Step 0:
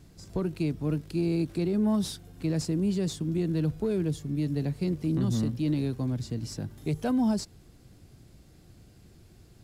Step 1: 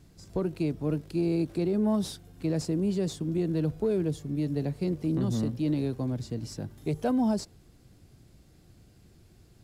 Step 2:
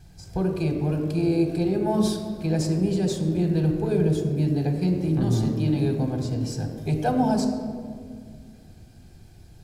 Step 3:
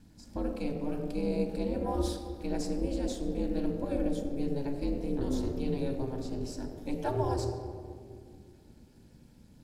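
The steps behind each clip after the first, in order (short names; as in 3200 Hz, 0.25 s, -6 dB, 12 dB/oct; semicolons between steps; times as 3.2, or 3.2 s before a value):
dynamic EQ 560 Hz, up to +6 dB, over -43 dBFS, Q 0.81; gain -2.5 dB
reverb RT60 2.1 s, pre-delay 3 ms, DRR 4 dB; gain +1.5 dB
ring modulator 140 Hz; gain -5.5 dB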